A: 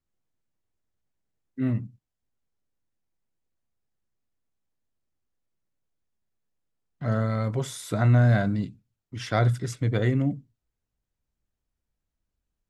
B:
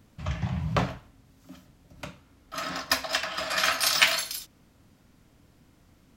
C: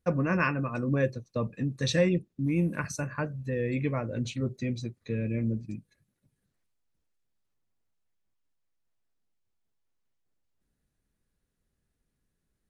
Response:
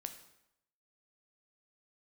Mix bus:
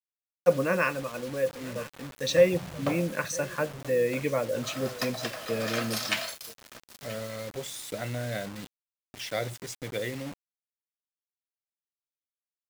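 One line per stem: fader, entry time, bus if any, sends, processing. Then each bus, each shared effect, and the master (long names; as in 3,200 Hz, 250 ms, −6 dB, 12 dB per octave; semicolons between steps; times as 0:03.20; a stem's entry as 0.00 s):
−14.0 dB, 0.00 s, no send, no echo send, harmonic and percussive parts rebalanced percussive +4 dB; high shelf with overshoot 1,700 Hz +9.5 dB, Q 1.5
−10.0 dB, 2.10 s, send −15 dB, echo send −17 dB, no processing
0.0 dB, 0.40 s, send −19 dB, echo send −19.5 dB, tilt shelving filter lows −4.5 dB; automatic ducking −11 dB, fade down 0.95 s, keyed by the first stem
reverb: on, RT60 0.80 s, pre-delay 8 ms
echo: single-tap delay 981 ms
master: high-pass filter 130 Hz 12 dB per octave; parametric band 530 Hz +11.5 dB 0.58 octaves; bit reduction 7 bits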